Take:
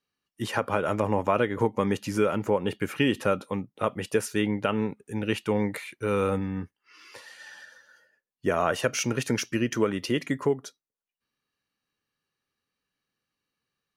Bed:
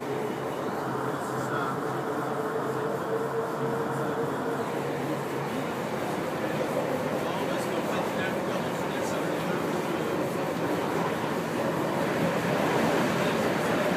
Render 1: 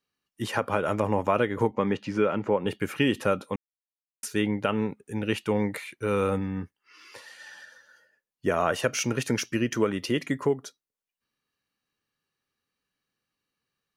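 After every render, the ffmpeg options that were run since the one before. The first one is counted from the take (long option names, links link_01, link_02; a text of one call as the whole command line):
ffmpeg -i in.wav -filter_complex "[0:a]asettb=1/sr,asplit=3[link_01][link_02][link_03];[link_01]atrim=end=1.714[link_04];[link_02]atrim=start=1.71:end=2.66,asetpts=PTS-STARTPTS,afade=type=in:duration=0.004:curve=qsin,afade=type=out:start_time=0.946:duration=0.004:curve=qsin,highpass=110,lowpass=3600[link_05];[link_03]atrim=start=2.656[link_06];[link_04][link_05]acrossfade=duration=0.004:curve1=hsin:curve2=qsin[link_07];[link_07][link_06]acrossfade=duration=0.004:curve1=qsin:curve2=hsin,asplit=3[link_08][link_09][link_10];[link_08]atrim=end=3.56,asetpts=PTS-STARTPTS,afade=type=out:start_time=3.556:duration=0.004:curve=hsin[link_11];[link_09]atrim=start=3.56:end=4.23,asetpts=PTS-STARTPTS,volume=0[link_12];[link_10]atrim=start=4.23,asetpts=PTS-STARTPTS,afade=type=in:duration=0.004:curve=hsin[link_13];[link_11][link_12][link_13]concat=n=3:v=0:a=1" out.wav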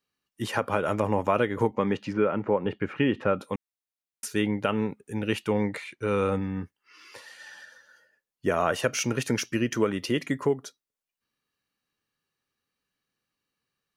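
ffmpeg -i in.wav -filter_complex "[0:a]asplit=3[link_01][link_02][link_03];[link_01]afade=type=out:start_time=2.12:duration=0.02[link_04];[link_02]lowpass=2300,afade=type=in:start_time=2.12:duration=0.02,afade=type=out:start_time=3.38:duration=0.02[link_05];[link_03]afade=type=in:start_time=3.38:duration=0.02[link_06];[link_04][link_05][link_06]amix=inputs=3:normalize=0,asettb=1/sr,asplit=3[link_07][link_08][link_09];[link_07]atrim=end=5.484[link_10];[link_08]atrim=start=5.48:end=6.62,asetpts=PTS-STARTPTS,afade=type=in:duration=0.004:curve=qsin,afade=type=out:start_time=1.136:duration=0.004:curve=qsin,lowpass=7600[link_11];[link_09]atrim=start=6.616[link_12];[link_10][link_11]acrossfade=duration=0.004:curve1=hsin:curve2=qsin[link_13];[link_13][link_12]acrossfade=duration=0.004:curve1=qsin:curve2=hsin" out.wav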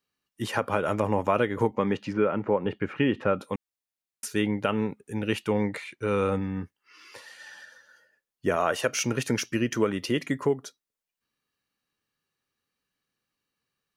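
ffmpeg -i in.wav -filter_complex "[0:a]asettb=1/sr,asplit=3[link_01][link_02][link_03];[link_01]atrim=end=8.564[link_04];[link_02]atrim=start=8.56:end=9.02,asetpts=PTS-STARTPTS,afade=type=in:duration=0.004:curve=qsin,afade=type=out:start_time=0.456:duration=0.004:curve=qsin,bass=frequency=250:gain=-6,treble=frequency=4000:gain=1[link_05];[link_03]atrim=start=9.016[link_06];[link_04][link_05]acrossfade=duration=0.004:curve1=hsin:curve2=qsin[link_07];[link_07][link_06]acrossfade=duration=0.004:curve1=qsin:curve2=hsin" out.wav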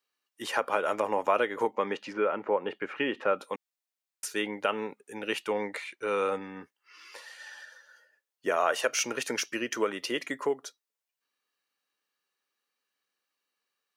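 ffmpeg -i in.wav -af "highpass=450,equalizer=frequency=11000:width=4.9:gain=-3.5" out.wav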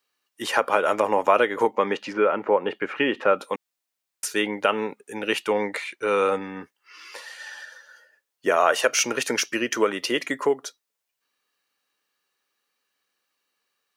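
ffmpeg -i in.wav -af "volume=7dB" out.wav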